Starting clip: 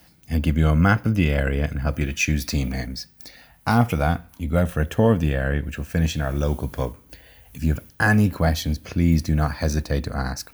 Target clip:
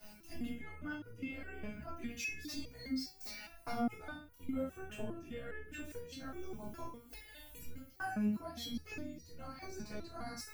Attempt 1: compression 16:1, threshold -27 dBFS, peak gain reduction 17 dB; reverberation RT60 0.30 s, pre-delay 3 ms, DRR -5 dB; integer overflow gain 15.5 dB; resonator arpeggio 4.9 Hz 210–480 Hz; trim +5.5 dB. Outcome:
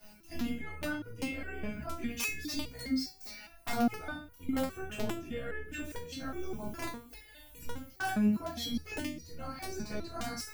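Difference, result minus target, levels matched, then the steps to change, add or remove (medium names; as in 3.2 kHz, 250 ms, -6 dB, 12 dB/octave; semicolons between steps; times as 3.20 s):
compression: peak gain reduction -6.5 dB
change: compression 16:1, threshold -34 dBFS, peak gain reduction 23.5 dB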